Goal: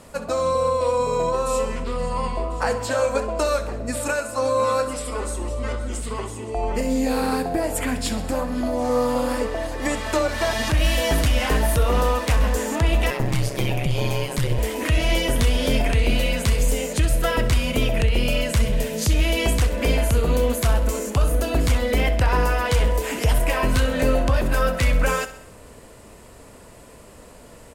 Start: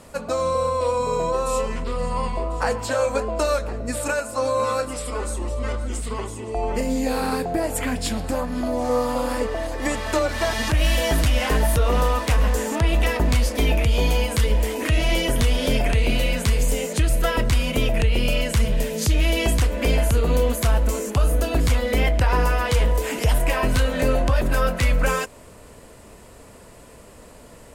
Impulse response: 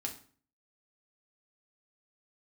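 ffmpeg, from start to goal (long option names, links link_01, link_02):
-filter_complex "[0:a]aecho=1:1:65|130|195|260|325:0.211|0.112|0.0594|0.0315|0.0167,asettb=1/sr,asplit=3[link_01][link_02][link_03];[link_01]atrim=end=13.104[link_04];[link_02]atrim=start=13.1:end=14.58,asetpts=PTS-STARTPTS,afade=type=in:duration=0.004:curve=qsin,afade=type=out:start_time=1.476:duration=0.004:curve=qsin,aeval=exprs='val(0)*sin(2*PI*67*n/s)':channel_layout=same[link_05];[link_03]atrim=start=14.576[link_06];[link_04][link_05]acrossfade=duration=0.004:curve1=hsin:curve2=qsin[link_07];[link_07][link_06]acrossfade=duration=0.004:curve1=qsin:curve2=hsin"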